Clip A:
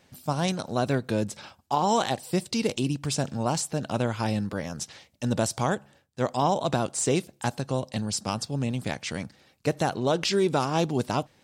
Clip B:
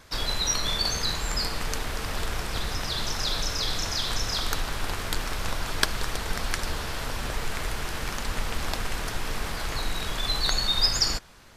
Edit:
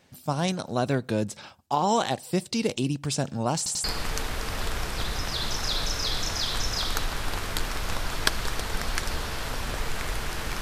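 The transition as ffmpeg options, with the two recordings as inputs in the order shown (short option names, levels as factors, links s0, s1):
-filter_complex "[0:a]apad=whole_dur=10.61,atrim=end=10.61,asplit=3[s0][s1][s2];[s0]atrim=end=3.662[s3];[s1]atrim=start=3.568:end=3.662[s4];[s2]atrim=start=3.568:end=3.662[s5];[1:a]atrim=start=1.398:end=8.17[s6];[s3][s4]acrossfade=d=0.004:c1=hsin:c2=hsin[s7];[s7][s5]acrossfade=d=0.004:c1=hsin:c2=hsin[s8];[s8][s6]acrossfade=d=0.004:c1=hsin:c2=hsin"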